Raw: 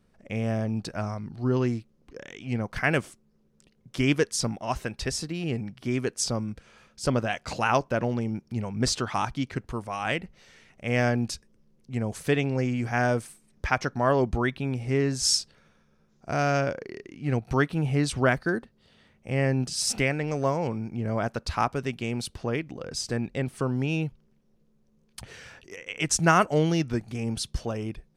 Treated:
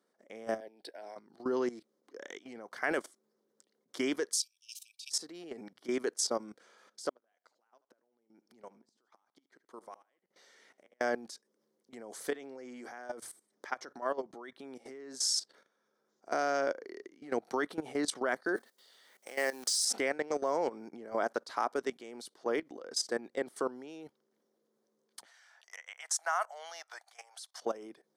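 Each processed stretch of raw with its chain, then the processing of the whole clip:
0.6–1.16 HPF 510 Hz + fixed phaser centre 2900 Hz, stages 4
4.33–5.12 brick-wall FIR high-pass 2300 Hz + high shelf 10000 Hz +7 dB
7.09–11.01 compressor 2:1, threshold -48 dBFS + flipped gate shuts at -32 dBFS, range -25 dB + feedback echo 76 ms, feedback 38%, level -17.5 dB
12.3–15.14 notches 60/120 Hz + compressor 2:1, threshold -34 dBFS
18.56–19.85 G.711 law mismatch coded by mu + HPF 810 Hz 6 dB/oct + high shelf 3500 Hz +9.5 dB
25.25–27.62 elliptic high-pass 700 Hz, stop band 70 dB + dynamic EQ 3900 Hz, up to -4 dB, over -39 dBFS, Q 0.71
whole clip: HPF 310 Hz 24 dB/oct; bell 2600 Hz -14 dB 0.31 oct; level quantiser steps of 16 dB; gain +1.5 dB

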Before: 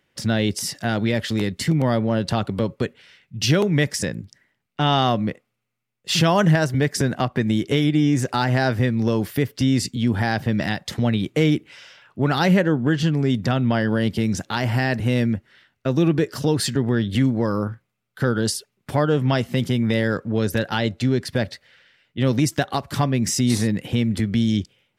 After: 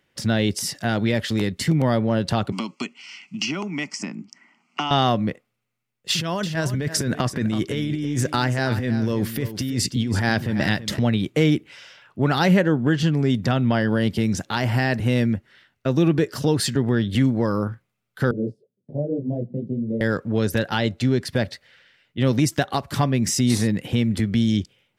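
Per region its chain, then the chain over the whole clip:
2.52–4.91 elliptic band-pass 220–9500 Hz + fixed phaser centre 2500 Hz, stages 8 + three-band squash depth 100%
6.1–10.99 bell 780 Hz -5.5 dB 0.41 oct + negative-ratio compressor -23 dBFS + echo 0.33 s -12 dB
18.31–20.01 elliptic band-pass 120–560 Hz + detuned doubles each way 35 cents
whole clip: dry

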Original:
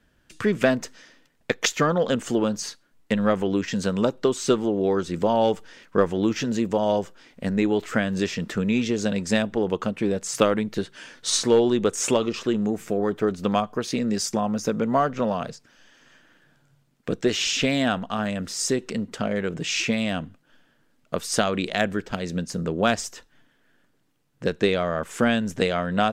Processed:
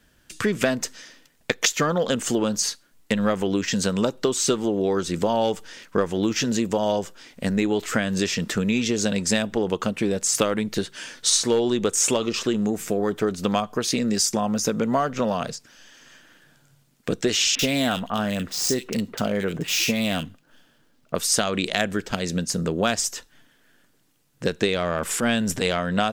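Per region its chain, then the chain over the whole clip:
17.55–21.15 median filter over 5 samples + bands offset in time lows, highs 40 ms, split 2000 Hz
24.76–25.78 notch 6400 Hz, Q 13 + transient shaper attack -8 dB, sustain +5 dB
whole clip: high shelf 3800 Hz +10 dB; compressor 2.5:1, threshold -22 dBFS; gain +2.5 dB

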